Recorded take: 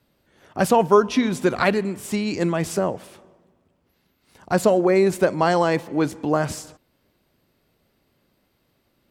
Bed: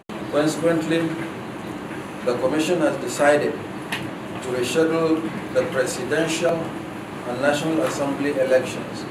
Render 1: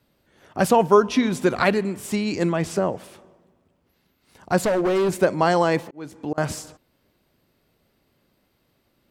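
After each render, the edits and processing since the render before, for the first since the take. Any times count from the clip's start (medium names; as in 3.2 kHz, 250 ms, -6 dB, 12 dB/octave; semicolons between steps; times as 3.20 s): 2.49–2.93 s: treble shelf 9.7 kHz -10.5 dB; 4.61–5.09 s: hard clipper -17.5 dBFS; 5.81–6.38 s: slow attack 628 ms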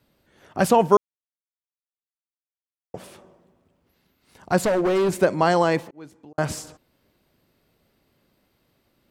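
0.97–2.94 s: mute; 5.69–6.38 s: fade out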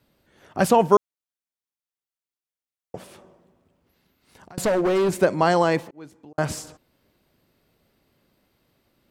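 3.03–4.58 s: compression 10:1, threshold -42 dBFS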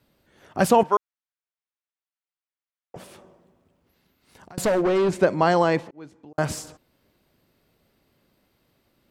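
0.83–2.96 s: band-pass filter 1.5 kHz, Q 0.73; 4.82–6.32 s: distance through air 57 m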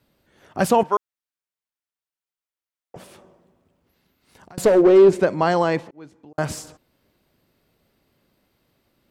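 4.64–5.20 s: peaking EQ 410 Hz +11 dB 0.83 oct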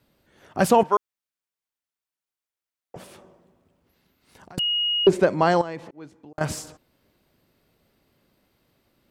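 4.59–5.07 s: bleep 2.88 kHz -20.5 dBFS; 5.61–6.41 s: compression, threshold -29 dBFS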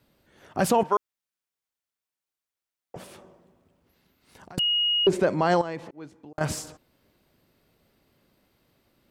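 peak limiter -11.5 dBFS, peak gain reduction 6 dB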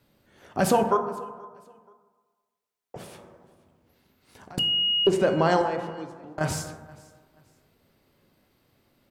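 feedback delay 479 ms, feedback 29%, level -23.5 dB; plate-style reverb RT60 1.4 s, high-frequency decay 0.3×, DRR 5.5 dB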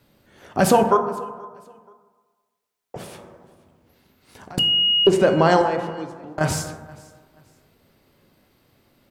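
trim +5.5 dB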